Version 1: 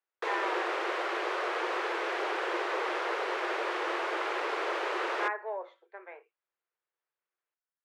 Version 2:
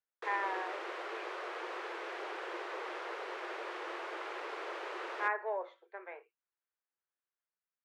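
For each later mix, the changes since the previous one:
background -9.5 dB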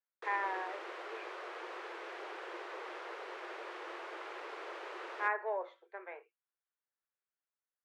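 background -3.5 dB

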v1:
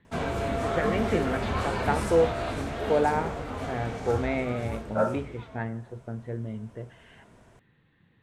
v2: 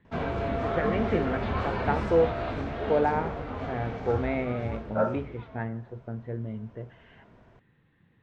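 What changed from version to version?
master: add air absorption 210 m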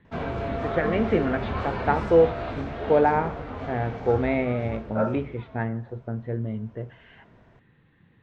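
first voice +5.0 dB

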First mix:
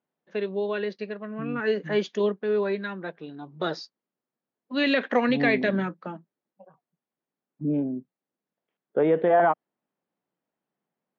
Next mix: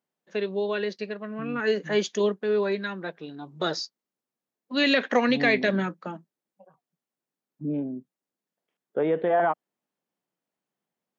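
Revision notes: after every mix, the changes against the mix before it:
second voice -3.5 dB; master: remove air absorption 180 m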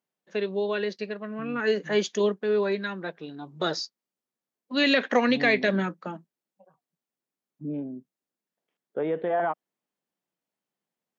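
second voice -3.5 dB

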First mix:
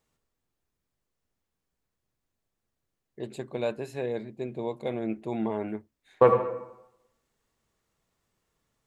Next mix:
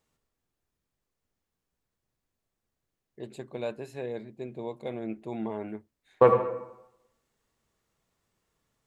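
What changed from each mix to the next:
first voice -4.0 dB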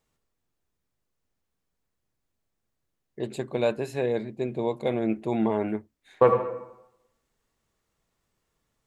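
first voice +9.0 dB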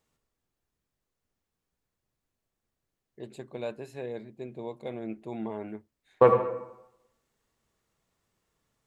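first voice -10.5 dB

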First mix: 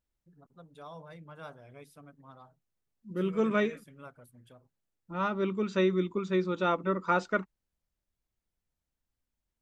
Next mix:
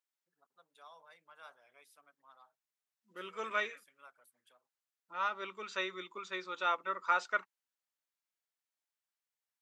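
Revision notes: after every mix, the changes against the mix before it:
first voice -4.0 dB; master: add HPF 1000 Hz 12 dB/oct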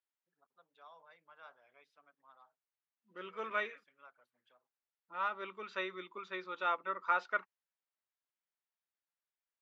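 master: add air absorption 220 m

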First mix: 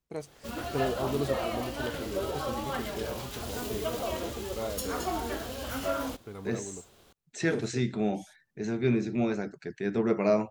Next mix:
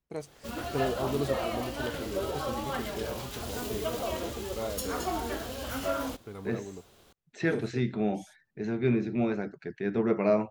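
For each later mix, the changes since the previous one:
second voice: add LPF 3400 Hz 12 dB/oct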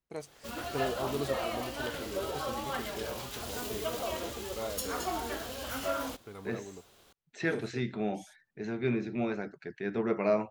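master: add low shelf 480 Hz -6 dB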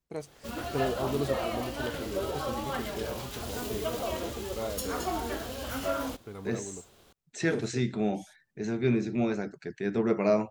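second voice: remove LPF 3400 Hz 12 dB/oct; master: add low shelf 480 Hz +6 dB

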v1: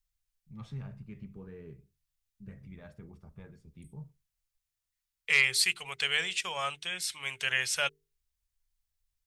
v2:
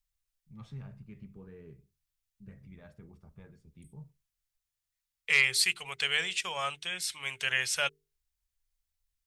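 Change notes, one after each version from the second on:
first voice -3.0 dB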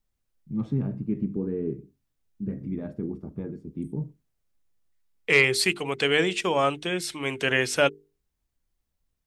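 master: remove passive tone stack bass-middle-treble 10-0-10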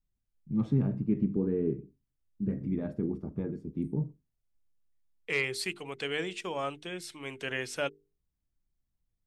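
second voice -11.0 dB

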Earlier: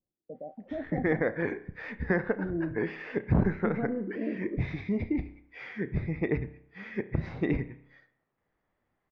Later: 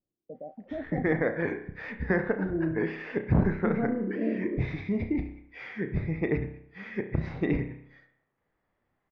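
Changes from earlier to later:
second voice: send +9.0 dB; background: send +6.5 dB

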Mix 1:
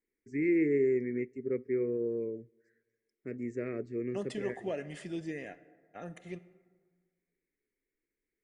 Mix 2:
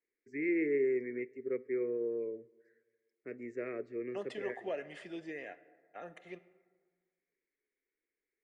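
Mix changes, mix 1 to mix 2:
first voice: send +7.5 dB; master: add three-band isolator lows -15 dB, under 360 Hz, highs -13 dB, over 4100 Hz

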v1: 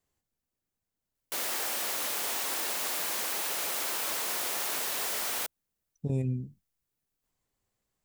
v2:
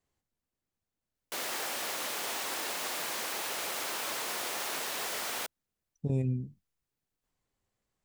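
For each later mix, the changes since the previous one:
master: add high shelf 8100 Hz -8 dB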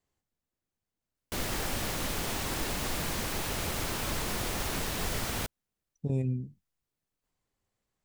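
background: remove HPF 510 Hz 12 dB/oct

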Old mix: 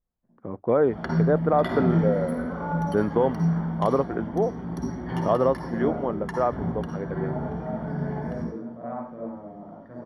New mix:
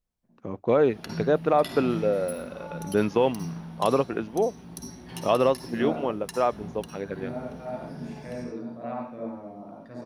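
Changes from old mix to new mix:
background -11.5 dB; master: remove polynomial smoothing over 41 samples

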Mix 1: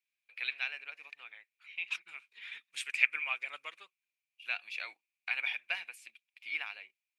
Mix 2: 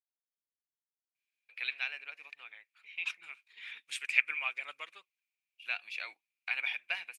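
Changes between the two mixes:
first voice: entry +1.20 s; second voice: entry +1.15 s

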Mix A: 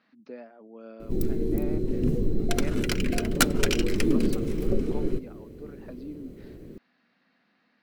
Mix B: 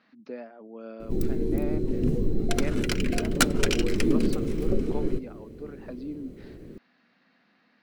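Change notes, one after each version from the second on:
speech +3.5 dB; background: add bell 14000 Hz -11.5 dB 0.23 oct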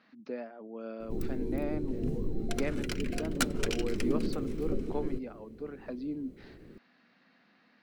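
background -8.0 dB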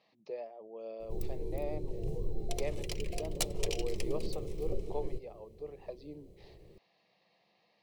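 master: add fixed phaser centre 610 Hz, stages 4

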